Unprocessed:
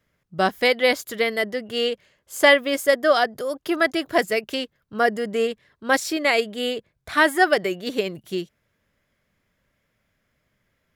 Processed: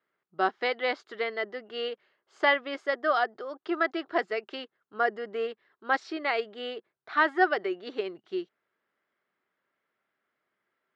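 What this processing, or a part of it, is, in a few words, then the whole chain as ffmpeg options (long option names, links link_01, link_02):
phone earpiece: -af "highpass=370,equalizer=frequency=370:width_type=q:width=4:gain=7,equalizer=frequency=550:width_type=q:width=4:gain=-5,equalizer=frequency=810:width_type=q:width=4:gain=4,equalizer=frequency=1300:width_type=q:width=4:gain=6,equalizer=frequency=2400:width_type=q:width=4:gain=-4,equalizer=frequency=3400:width_type=q:width=4:gain=-4,lowpass=frequency=4000:width=0.5412,lowpass=frequency=4000:width=1.3066,volume=-7.5dB"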